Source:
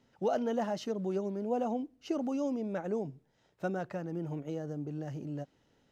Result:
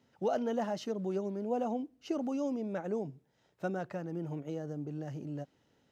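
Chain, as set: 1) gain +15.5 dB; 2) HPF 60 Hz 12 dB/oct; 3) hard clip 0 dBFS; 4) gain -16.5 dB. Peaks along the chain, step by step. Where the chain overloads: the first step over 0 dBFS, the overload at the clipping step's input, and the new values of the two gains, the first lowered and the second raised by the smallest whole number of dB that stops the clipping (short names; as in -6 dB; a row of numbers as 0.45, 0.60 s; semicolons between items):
-4.5, -4.5, -4.5, -21.0 dBFS; no overload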